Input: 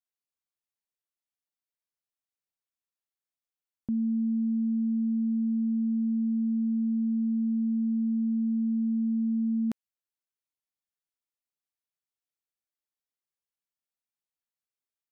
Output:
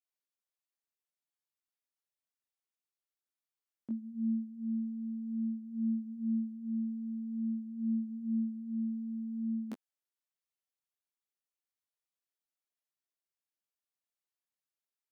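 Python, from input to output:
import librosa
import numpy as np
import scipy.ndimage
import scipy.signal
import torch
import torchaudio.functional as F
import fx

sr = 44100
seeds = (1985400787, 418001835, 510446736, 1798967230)

y = scipy.signal.sosfilt(scipy.signal.butter(2, 250.0, 'highpass', fs=sr, output='sos'), x)
y = fx.detune_double(y, sr, cents=17)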